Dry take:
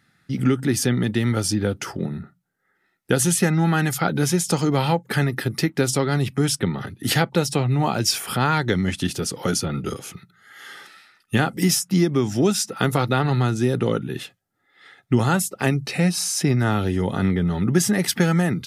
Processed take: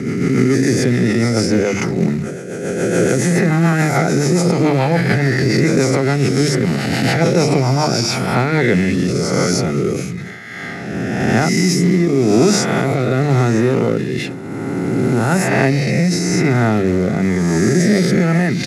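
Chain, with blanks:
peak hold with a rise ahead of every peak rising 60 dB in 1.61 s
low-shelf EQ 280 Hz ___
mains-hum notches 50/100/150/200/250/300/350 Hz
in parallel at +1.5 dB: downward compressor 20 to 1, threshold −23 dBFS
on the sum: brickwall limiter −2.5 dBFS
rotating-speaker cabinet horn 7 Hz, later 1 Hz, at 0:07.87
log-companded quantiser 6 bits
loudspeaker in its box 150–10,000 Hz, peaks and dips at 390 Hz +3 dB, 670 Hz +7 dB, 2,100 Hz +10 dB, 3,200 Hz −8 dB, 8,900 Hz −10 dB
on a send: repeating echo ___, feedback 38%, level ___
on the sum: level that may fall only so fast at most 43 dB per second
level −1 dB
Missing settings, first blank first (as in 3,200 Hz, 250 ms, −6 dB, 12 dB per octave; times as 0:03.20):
+11.5 dB, 209 ms, −23 dB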